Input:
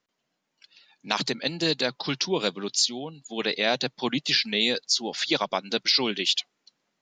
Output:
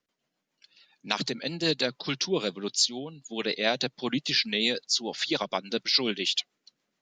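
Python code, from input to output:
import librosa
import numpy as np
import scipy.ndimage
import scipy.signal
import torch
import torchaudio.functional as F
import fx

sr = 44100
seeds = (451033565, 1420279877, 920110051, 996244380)

y = fx.rotary(x, sr, hz=7.0)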